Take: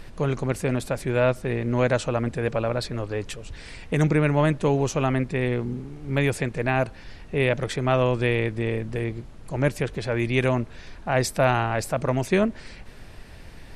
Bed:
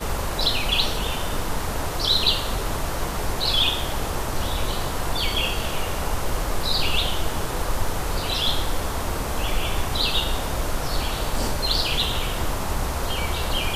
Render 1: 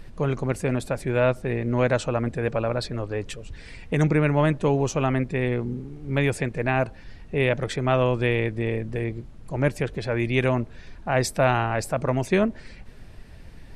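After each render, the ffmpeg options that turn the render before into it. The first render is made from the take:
ffmpeg -i in.wav -af "afftdn=noise_reduction=6:noise_floor=-43" out.wav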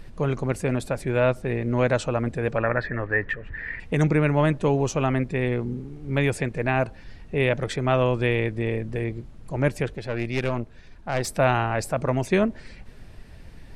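ffmpeg -i in.wav -filter_complex "[0:a]asettb=1/sr,asplit=3[link_01][link_02][link_03];[link_01]atrim=end=2.584[link_04];[link_02]atrim=start=2.58:end=3.8,asetpts=PTS-STARTPTS,afade=type=in:duration=0.004:curve=qsin,afade=type=out:start_time=1.216:duration=0.004:curve=qsin,lowpass=frequency=1800:width_type=q:width=11[link_05];[link_03]atrim=start=3.796[link_06];[link_04][link_05]acrossfade=duration=0.004:curve1=hsin:curve2=qsin[link_07];[link_07][link_06]acrossfade=duration=0.004:curve1=qsin:curve2=hsin,asplit=3[link_08][link_09][link_10];[link_08]afade=type=out:start_time=9.92:duration=0.02[link_11];[link_09]aeval=exprs='(tanh(7.94*val(0)+0.8)-tanh(0.8))/7.94':channel_layout=same,afade=type=in:start_time=9.92:duration=0.02,afade=type=out:start_time=11.26:duration=0.02[link_12];[link_10]afade=type=in:start_time=11.26:duration=0.02[link_13];[link_11][link_12][link_13]amix=inputs=3:normalize=0" out.wav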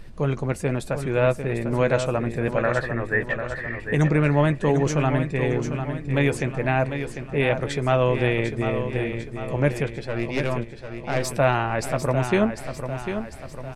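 ffmpeg -i in.wav -filter_complex "[0:a]asplit=2[link_01][link_02];[link_02]adelay=14,volume=-11.5dB[link_03];[link_01][link_03]amix=inputs=2:normalize=0,aecho=1:1:748|1496|2244|2992|3740|4488:0.376|0.188|0.094|0.047|0.0235|0.0117" out.wav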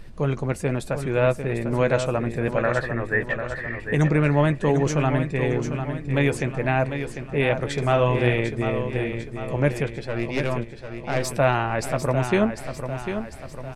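ffmpeg -i in.wav -filter_complex "[0:a]asettb=1/sr,asplit=3[link_01][link_02][link_03];[link_01]atrim=end=7.734[link_04];[link_02]atrim=start=7.73:end=8.36,asetpts=PTS-STARTPTS,afade=type=in:duration=0.004:curve=qsin,afade=type=out:start_time=0.626:duration=0.004:curve=qsin,asplit=2[link_05][link_06];[link_06]adelay=49,volume=-6dB[link_07];[link_05][link_07]amix=inputs=2:normalize=0,atrim=end_sample=27783[link_08];[link_03]atrim=start=8.356[link_09];[link_04][link_08]acrossfade=duration=0.004:curve1=hsin:curve2=qsin[link_10];[link_10][link_09]acrossfade=duration=0.004:curve1=qsin:curve2=hsin" out.wav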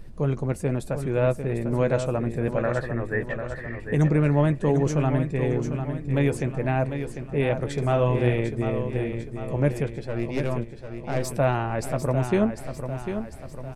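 ffmpeg -i in.wav -af "equalizer=frequency=2600:width=0.35:gain=-7.5" out.wav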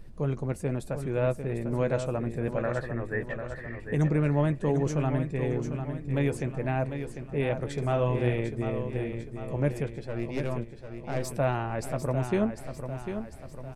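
ffmpeg -i in.wav -af "volume=-4.5dB" out.wav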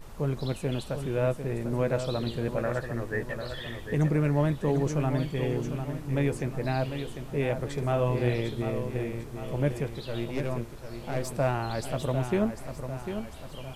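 ffmpeg -i in.wav -i bed.wav -filter_complex "[1:a]volume=-23dB[link_01];[0:a][link_01]amix=inputs=2:normalize=0" out.wav

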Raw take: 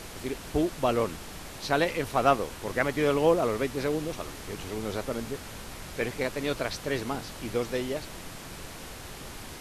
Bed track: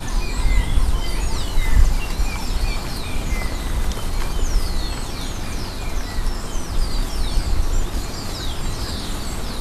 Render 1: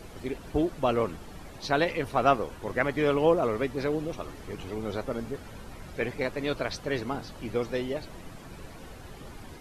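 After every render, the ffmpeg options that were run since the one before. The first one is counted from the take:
ffmpeg -i in.wav -af "afftdn=noise_reduction=11:noise_floor=-43" out.wav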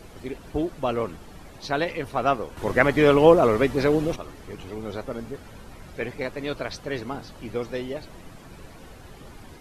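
ffmpeg -i in.wav -filter_complex "[0:a]asplit=3[link_01][link_02][link_03];[link_01]atrim=end=2.572[link_04];[link_02]atrim=start=2.568:end=4.162,asetpts=PTS-STARTPTS,volume=8dB[link_05];[link_03]atrim=start=4.158[link_06];[link_04][link_05]acrossfade=duration=0.004:curve1=hsin:curve2=hsin[link_07];[link_07][link_06]acrossfade=duration=0.004:curve1=hsin:curve2=hsin" out.wav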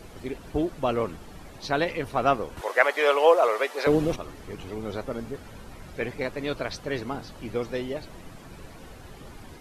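ffmpeg -i in.wav -filter_complex "[0:a]asettb=1/sr,asplit=3[link_01][link_02][link_03];[link_01]atrim=end=2.614[link_04];[link_02]atrim=start=2.61:end=3.87,asetpts=PTS-STARTPTS,afade=type=in:duration=0.004:curve=qsin,afade=type=out:start_time=1.256:duration=0.004:curve=qsin,highpass=frequency=510:width=0.5412,highpass=frequency=510:width=1.3066[link_05];[link_03]atrim=start=3.866[link_06];[link_04][link_05]acrossfade=duration=0.004:curve1=hsin:curve2=qsin[link_07];[link_07][link_06]acrossfade=duration=0.004:curve1=qsin:curve2=hsin" out.wav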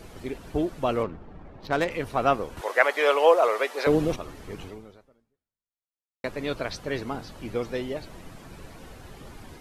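ffmpeg -i in.wav -filter_complex "[0:a]asettb=1/sr,asplit=3[link_01][link_02][link_03];[link_01]atrim=end=1.034[link_04];[link_02]atrim=start=1.03:end=1.91,asetpts=PTS-STARTPTS,afade=type=in:duration=0.004:curve=qsin,afade=type=out:start_time=0.876:duration=0.004:curve=qsin,adynamicsmooth=sensitivity=4:basefreq=1300[link_05];[link_03]atrim=start=1.906[link_06];[link_04][link_05]acrossfade=duration=0.004:curve1=hsin:curve2=qsin[link_07];[link_07][link_06]acrossfade=duration=0.004:curve1=qsin:curve2=hsin,asplit=2[link_08][link_09];[link_08]atrim=end=6.24,asetpts=PTS-STARTPTS,afade=type=out:start_time=4.64:duration=1.6:curve=exp[link_10];[link_09]atrim=start=6.24,asetpts=PTS-STARTPTS,afade=type=in:duration=0.004:curve=hsin[link_11];[link_10][link_11]concat=n=2:v=0:a=1" out.wav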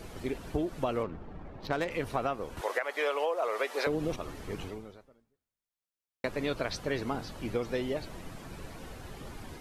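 ffmpeg -i in.wav -af "alimiter=limit=-14dB:level=0:latency=1:release=469,acompressor=threshold=-27dB:ratio=6" out.wav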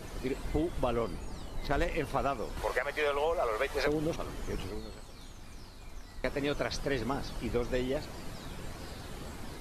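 ffmpeg -i in.wav -i bed.wav -filter_complex "[1:a]volume=-22dB[link_01];[0:a][link_01]amix=inputs=2:normalize=0" out.wav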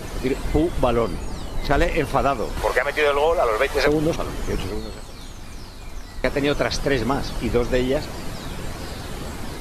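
ffmpeg -i in.wav -af "volume=11.5dB" out.wav

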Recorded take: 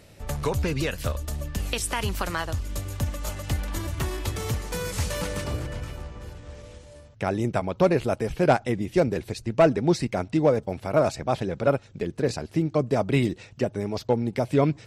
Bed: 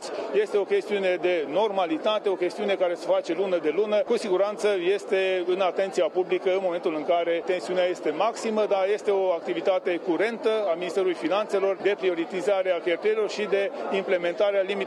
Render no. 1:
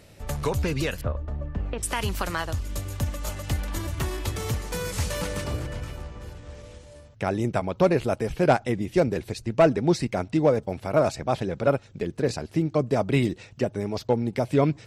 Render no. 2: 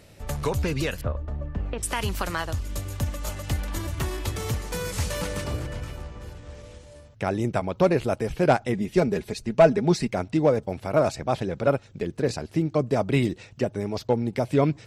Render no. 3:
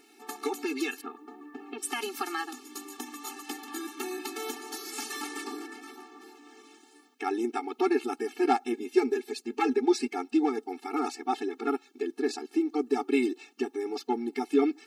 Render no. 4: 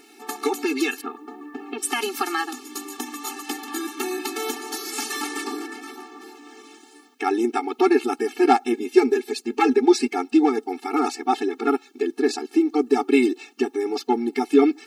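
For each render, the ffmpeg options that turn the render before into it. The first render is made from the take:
ffmpeg -i in.wav -filter_complex "[0:a]asettb=1/sr,asplit=3[link_01][link_02][link_03];[link_01]atrim=end=1.014[link_04];[link_02]atrim=start=1.01:end=1.83,asetpts=PTS-STARTPTS,afade=type=in:duration=0.004:curve=qsin,afade=type=out:start_time=0.816:duration=0.004:curve=qsin,lowpass=1300[link_05];[link_03]atrim=start=1.826[link_06];[link_04][link_05]acrossfade=duration=0.004:curve1=hsin:curve2=qsin[link_07];[link_07][link_06]acrossfade=duration=0.004:curve1=qsin:curve2=hsin" out.wav
ffmpeg -i in.wav -filter_complex "[0:a]asettb=1/sr,asplit=3[link_01][link_02][link_03];[link_01]atrim=end=8.734[link_04];[link_02]atrim=start=8.73:end=10.08,asetpts=PTS-STARTPTS,afade=type=in:duration=0.004:curve=qsin,afade=type=out:start_time=1.346:duration=0.004:curve=qsin,aecho=1:1:4.8:0.52,atrim=end_sample=59535[link_05];[link_03]atrim=start=10.076[link_06];[link_04][link_05]acrossfade=duration=0.004:curve1=hsin:curve2=qsin[link_07];[link_07][link_06]acrossfade=duration=0.004:curve1=qsin:curve2=hsin" out.wav
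ffmpeg -i in.wav -af "acrusher=bits=11:mix=0:aa=0.000001,afftfilt=real='re*eq(mod(floor(b*sr/1024/230),2),1)':imag='im*eq(mod(floor(b*sr/1024/230),2),1)':win_size=1024:overlap=0.75" out.wav
ffmpeg -i in.wav -af "volume=8dB" out.wav

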